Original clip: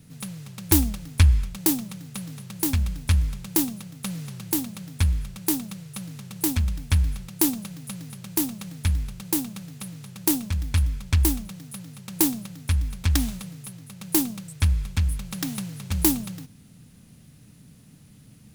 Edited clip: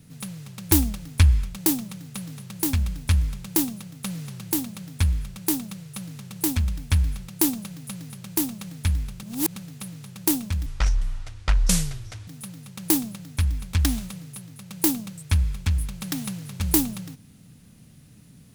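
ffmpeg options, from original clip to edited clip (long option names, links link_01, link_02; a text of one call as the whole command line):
ffmpeg -i in.wav -filter_complex "[0:a]asplit=5[link_01][link_02][link_03][link_04][link_05];[link_01]atrim=end=9.232[link_06];[link_02]atrim=start=9.228:end=9.562,asetpts=PTS-STARTPTS,areverse[link_07];[link_03]atrim=start=9.558:end=10.664[link_08];[link_04]atrim=start=10.66:end=11.58,asetpts=PTS-STARTPTS,asetrate=25137,aresample=44100[link_09];[link_05]atrim=start=11.576[link_10];[link_06][link_07]acrossfade=duration=0.004:curve1=hsin:curve2=hsin[link_11];[link_11][link_08]acrossfade=duration=0.004:curve1=hsin:curve2=hsin[link_12];[link_12][link_09]acrossfade=duration=0.004:curve1=hsin:curve2=hsin[link_13];[link_13][link_10]acrossfade=duration=0.004:curve1=hsin:curve2=hsin" out.wav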